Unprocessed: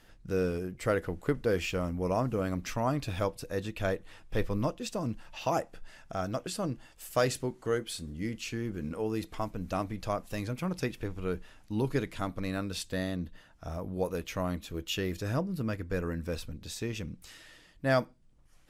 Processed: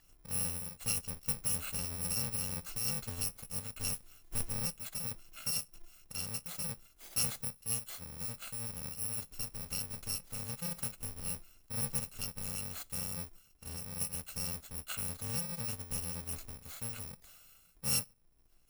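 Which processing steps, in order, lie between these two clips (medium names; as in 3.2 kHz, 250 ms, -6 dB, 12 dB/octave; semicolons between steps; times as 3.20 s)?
bit-reversed sample order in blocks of 128 samples; 3.82–4.38 s: modulation noise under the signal 20 dB; trim -6 dB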